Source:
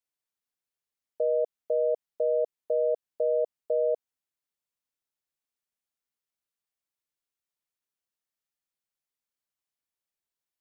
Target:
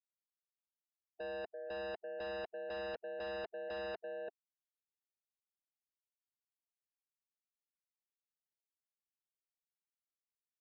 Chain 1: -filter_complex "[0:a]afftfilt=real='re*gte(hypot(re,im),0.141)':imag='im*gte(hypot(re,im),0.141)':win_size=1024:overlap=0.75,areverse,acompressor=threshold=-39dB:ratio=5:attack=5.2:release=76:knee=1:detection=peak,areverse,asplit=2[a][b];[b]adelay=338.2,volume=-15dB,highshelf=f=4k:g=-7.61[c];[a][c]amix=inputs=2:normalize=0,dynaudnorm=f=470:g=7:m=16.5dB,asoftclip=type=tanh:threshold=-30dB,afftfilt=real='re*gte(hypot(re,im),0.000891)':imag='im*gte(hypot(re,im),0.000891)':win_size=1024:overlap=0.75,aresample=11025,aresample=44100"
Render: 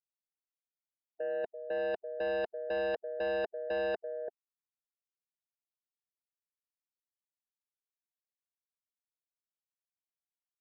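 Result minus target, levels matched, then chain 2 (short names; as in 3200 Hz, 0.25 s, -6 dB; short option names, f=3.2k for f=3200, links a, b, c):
soft clip: distortion -5 dB
-filter_complex "[0:a]afftfilt=real='re*gte(hypot(re,im),0.141)':imag='im*gte(hypot(re,im),0.141)':win_size=1024:overlap=0.75,areverse,acompressor=threshold=-39dB:ratio=5:attack=5.2:release=76:knee=1:detection=peak,areverse,asplit=2[a][b];[b]adelay=338.2,volume=-15dB,highshelf=f=4k:g=-7.61[c];[a][c]amix=inputs=2:normalize=0,dynaudnorm=f=470:g=7:m=16.5dB,asoftclip=type=tanh:threshold=-40.5dB,afftfilt=real='re*gte(hypot(re,im),0.000891)':imag='im*gte(hypot(re,im),0.000891)':win_size=1024:overlap=0.75,aresample=11025,aresample=44100"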